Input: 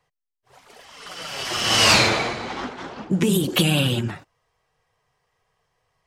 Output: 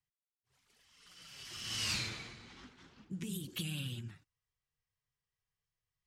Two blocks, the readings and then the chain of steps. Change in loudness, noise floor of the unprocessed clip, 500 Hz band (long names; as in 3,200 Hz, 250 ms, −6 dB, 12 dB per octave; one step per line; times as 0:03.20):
−20.5 dB, −82 dBFS, −30.0 dB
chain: guitar amp tone stack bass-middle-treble 6-0-2
level −3.5 dB